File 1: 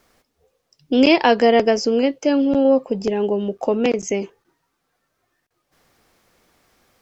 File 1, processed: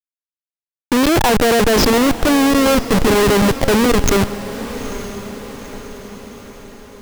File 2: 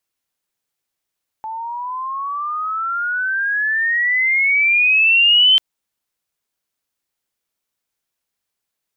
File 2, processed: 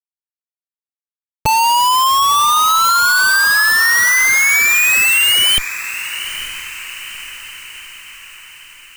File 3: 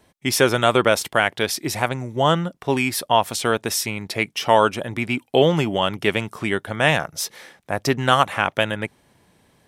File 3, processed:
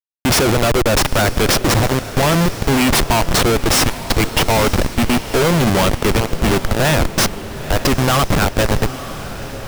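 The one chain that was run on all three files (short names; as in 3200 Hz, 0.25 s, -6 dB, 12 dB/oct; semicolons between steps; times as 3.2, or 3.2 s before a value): Schmitt trigger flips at -24.5 dBFS; diffused feedback echo 0.903 s, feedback 53%, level -13 dB; gain +8 dB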